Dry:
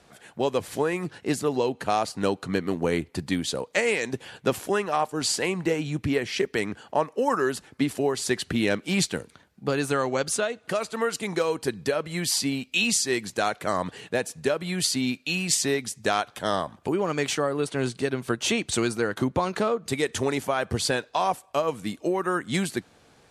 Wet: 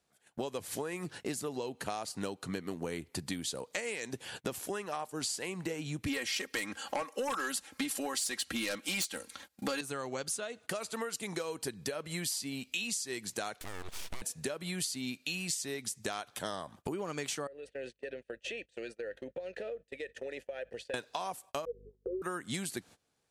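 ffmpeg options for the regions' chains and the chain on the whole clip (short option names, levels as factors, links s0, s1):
-filter_complex "[0:a]asettb=1/sr,asplit=3[s0][s1][s2];[s0]atrim=end=6.064[s3];[s1]atrim=start=6.06:end=9.81,asetpts=PTS-STARTPTS,afade=t=in:d=0.004:c=qsin,afade=t=out:st=3.746:d=0.004:c=qsin,lowshelf=f=490:g=-11,aecho=1:1:3.7:0.72,atrim=end_sample=165375,aeval=exprs='0.335*sin(PI/2*2.82*val(0)/0.335)':c=same[s4];[s2]atrim=start=9.806[s5];[s3][s4]acrossfade=d=0.004:c1=hsin:c2=qsin[s6];[s6][s5]acrossfade=d=0.004:c1=qsin:c2=hsin,asettb=1/sr,asplit=3[s7][s8][s9];[s7]atrim=end=13.614[s10];[s8]atrim=start=13.61:end=14.22,asetpts=PTS-STARTPTS,afade=t=in:d=0.004:c=qsin,afade=t=out:st=0.606:d=0.004:c=qsin,aeval=exprs='abs(val(0))':c=same,acompressor=threshold=0.0178:ratio=3:attack=3.2:release=140:knee=1:detection=peak,asubboost=boost=8.5:cutoff=60[s11];[s9]atrim=start=14.216[s12];[s10][s11]acrossfade=d=0.004:c1=hsin:c2=qsin[s13];[s13][s12]acrossfade=d=0.004:c1=qsin:c2=hsin,asettb=1/sr,asplit=3[s14][s15][s16];[s14]atrim=end=17.474[s17];[s15]atrim=start=17.47:end=20.94,asetpts=PTS-STARTPTS,afade=t=in:d=0.004:c=qsin,afade=t=out:st=3.466:d=0.004:c=qsin,asplit=3[s18][s19][s20];[s18]bandpass=f=530:t=q:w=8,volume=1[s21];[s19]bandpass=f=1840:t=q:w=8,volume=0.501[s22];[s20]bandpass=f=2480:t=q:w=8,volume=0.355[s23];[s21][s22][s23]amix=inputs=3:normalize=0,acompressor=threshold=0.0158:ratio=3:attack=3.2:release=140:knee=1:detection=peak,aeval=exprs='val(0)+0.000501*(sin(2*PI*50*n/s)+sin(2*PI*2*50*n/s)/2+sin(2*PI*3*50*n/s)/3+sin(2*PI*4*50*n/s)/4+sin(2*PI*5*50*n/s)/5)':c=same[s24];[s16]atrim=start=20.936[s25];[s17][s24]acrossfade=d=0.004:c1=hsin:c2=qsin[s26];[s26][s25]acrossfade=d=0.004:c1=qsin:c2=hsin,asettb=1/sr,asplit=3[s27][s28][s29];[s27]atrim=end=21.654[s30];[s28]atrim=start=21.65:end=22.22,asetpts=PTS-STARTPTS,afade=t=in:d=0.004:c=qsin,afade=t=out:st=0.566:d=0.004:c=qsin,asuperpass=centerf=440:order=20:qfactor=2.6,aeval=exprs='val(0)+0.00316*(sin(2*PI*50*n/s)+sin(2*PI*2*50*n/s)/2+sin(2*PI*3*50*n/s)/3+sin(2*PI*4*50*n/s)/4+sin(2*PI*5*50*n/s)/5)':c=same[s31];[s29]atrim=start=22.216[s32];[s30][s31]acrossfade=d=0.004:c1=hsin:c2=qsin[s33];[s33][s32]acrossfade=d=0.004:c1=qsin:c2=hsin,agate=range=0.0631:threshold=0.00631:ratio=16:detection=peak,highshelf=f=4900:g=10.5,acompressor=threshold=0.0178:ratio=6"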